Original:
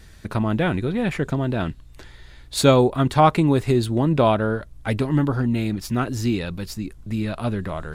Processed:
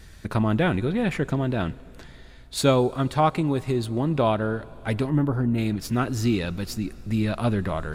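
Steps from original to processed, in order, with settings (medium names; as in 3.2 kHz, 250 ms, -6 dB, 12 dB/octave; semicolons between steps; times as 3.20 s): plate-style reverb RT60 4.3 s, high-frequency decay 0.95×, DRR 20 dB; gain riding within 5 dB 2 s; 5.10–5.58 s: peaking EQ 4.3 kHz -11.5 dB 2.3 oct; trim -3.5 dB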